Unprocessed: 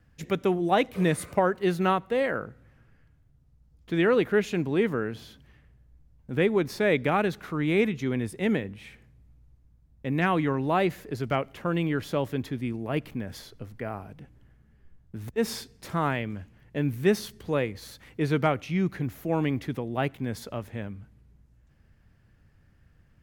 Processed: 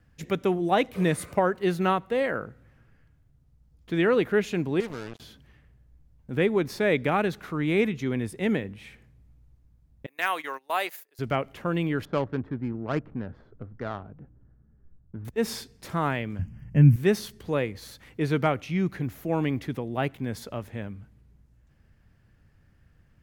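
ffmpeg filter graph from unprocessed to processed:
ffmpeg -i in.wav -filter_complex "[0:a]asettb=1/sr,asplit=3[link_01][link_02][link_03];[link_01]atrim=end=4.804[link_04];[link_02]atrim=start=4.8:end=5.2,asetpts=PTS-STARTPTS,afade=type=in:duration=0.004:curve=qsin,afade=type=out:start_time=0.396:duration=0.004:curve=qsin,highshelf=frequency=8300:gain=-11,acompressor=threshold=-37dB:ratio=2:attack=3.2:release=140:knee=1:detection=peak,acrusher=bits=5:mix=0:aa=0.5[link_05];[link_03]atrim=start=5.196[link_06];[link_04][link_05]acrossfade=duration=0.004:curve1=hsin:curve2=qsin[link_07];[link_07][link_06]acrossfade=duration=0.004:curve1=qsin:curve2=hsin,asettb=1/sr,asplit=3[link_08][link_09][link_10];[link_08]atrim=end=10.064[link_11];[link_09]atrim=start=10.06:end=11.19,asetpts=PTS-STARTPTS,afade=type=in:duration=0.004:curve=qsin,afade=type=out:start_time=1.126:duration=0.004:curve=qsin,highpass=660,aemphasis=mode=production:type=bsi,agate=range=-23dB:threshold=-37dB:ratio=16:release=100:detection=peak[link_12];[link_10]atrim=start=11.186[link_13];[link_11][link_12]acrossfade=duration=0.004:curve1=hsin:curve2=qsin[link_14];[link_14][link_13]acrossfade=duration=0.004:curve1=qsin:curve2=hsin,asettb=1/sr,asplit=3[link_15][link_16][link_17];[link_15]atrim=end=12.054[link_18];[link_16]atrim=start=12.05:end=15.25,asetpts=PTS-STARTPTS,afade=type=in:duration=0.004:curve=qsin,afade=type=out:start_time=3.196:duration=0.004:curve=qsin,equalizer=frequency=1400:width_type=o:width=0.65:gain=8.5,adynamicsmooth=sensitivity=1.5:basefreq=670[link_19];[link_17]atrim=start=15.246[link_20];[link_18][link_19]acrossfade=duration=0.004:curve1=hsin:curve2=qsin[link_21];[link_21][link_20]acrossfade=duration=0.004:curve1=qsin:curve2=hsin,asettb=1/sr,asplit=3[link_22][link_23][link_24];[link_22]atrim=end=16.394[link_25];[link_23]atrim=start=16.39:end=16.96,asetpts=PTS-STARTPTS,afade=type=in:duration=0.004:curve=qsin,afade=type=out:start_time=0.566:duration=0.004:curve=qsin,asuperstop=centerf=3800:order=12:qfactor=2.9,lowshelf=frequency=260:width_type=q:width=1.5:gain=12[link_26];[link_24]atrim=start=16.956[link_27];[link_25][link_26]acrossfade=duration=0.004:curve1=hsin:curve2=qsin[link_28];[link_28][link_27]acrossfade=duration=0.004:curve1=qsin:curve2=hsin" out.wav

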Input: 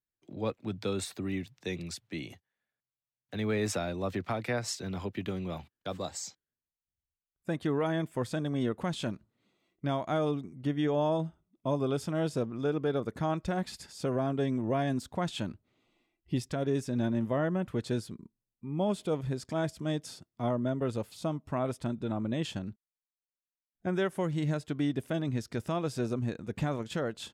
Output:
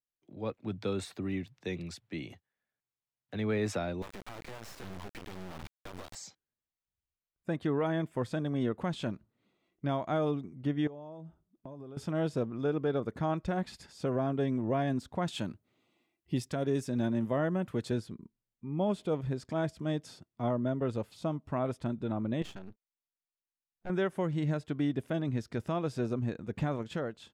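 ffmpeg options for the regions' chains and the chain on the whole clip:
ffmpeg -i in.wav -filter_complex "[0:a]asettb=1/sr,asplit=3[link_01][link_02][link_03];[link_01]atrim=end=4.024[link_04];[link_02]atrim=start=4.02:end=6.15,asetpts=PTS-STARTPTS,afade=type=in:duration=0.004:curve=qsin,afade=type=out:start_time=2.126:duration=0.004:curve=qsin,aeval=exprs='val(0)+0.5*0.015*sgn(val(0))':channel_layout=same,acompressor=threshold=-38dB:ratio=12:attack=3.2:release=140:knee=1:detection=peak,acrusher=bits=4:dc=4:mix=0:aa=0.000001[link_05];[link_03]atrim=start=6.146[link_06];[link_04][link_05]acrossfade=duration=0.004:curve1=hsin:curve2=qsin[link_07];[link_07][link_06]acrossfade=duration=0.004:curve1=qsin:curve2=hsin,asettb=1/sr,asplit=3[link_08][link_09][link_10];[link_08]atrim=end=10.874[link_11];[link_09]atrim=start=10.87:end=11.97,asetpts=PTS-STARTPTS,afade=type=in:duration=0.004:curve=qsin,afade=type=out:start_time=1.096:duration=0.004:curve=qsin,equalizer=frequency=3000:width_type=o:width=2.2:gain=-6,acompressor=threshold=-40dB:ratio=20:attack=3.2:release=140:knee=1:detection=peak[link_12];[link_10]atrim=start=11.966[link_13];[link_11][link_12]acrossfade=duration=0.004:curve1=hsin:curve2=qsin[link_14];[link_14][link_13]acrossfade=duration=0.004:curve1=qsin:curve2=hsin,asettb=1/sr,asplit=3[link_15][link_16][link_17];[link_15]atrim=end=15.284[link_18];[link_16]atrim=start=15.28:end=17.91,asetpts=PTS-STARTPTS,afade=type=in:duration=0.004:curve=qsin,afade=type=out:start_time=2.626:duration=0.004:curve=qsin,highpass=88,highshelf=frequency=6100:gain=11.5[link_19];[link_17]atrim=start=17.906[link_20];[link_18][link_19]acrossfade=duration=0.004:curve1=hsin:curve2=qsin[link_21];[link_21][link_20]acrossfade=duration=0.004:curve1=qsin:curve2=hsin,asettb=1/sr,asplit=3[link_22][link_23][link_24];[link_22]atrim=end=22.424[link_25];[link_23]atrim=start=22.42:end=23.9,asetpts=PTS-STARTPTS,afade=type=in:duration=0.004:curve=qsin,afade=type=out:start_time=1.476:duration=0.004:curve=qsin,lowshelf=frequency=460:gain=-4,aeval=exprs='max(val(0),0)':channel_layout=same[link_26];[link_24]atrim=start=23.896[link_27];[link_25][link_26]acrossfade=duration=0.004:curve1=hsin:curve2=qsin[link_28];[link_28][link_27]acrossfade=duration=0.004:curve1=qsin:curve2=hsin,dynaudnorm=framelen=180:gausssize=5:maxgain=8dB,highshelf=frequency=4800:gain=-10,volume=-8.5dB" out.wav

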